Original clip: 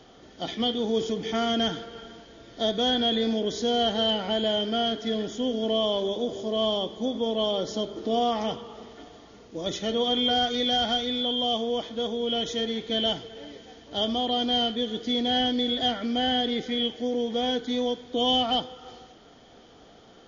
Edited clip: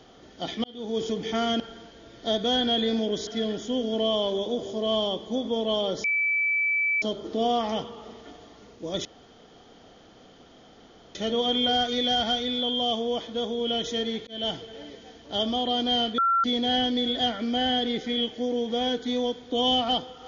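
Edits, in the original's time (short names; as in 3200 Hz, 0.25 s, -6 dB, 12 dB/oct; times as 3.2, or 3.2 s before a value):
0.64–1.08 fade in
1.6–1.94 cut
3.61–4.97 cut
7.74 add tone 2310 Hz -21.5 dBFS 0.98 s
9.77 insert room tone 2.10 s
12.89–13.16 fade in
14.8–15.06 bleep 1360 Hz -19 dBFS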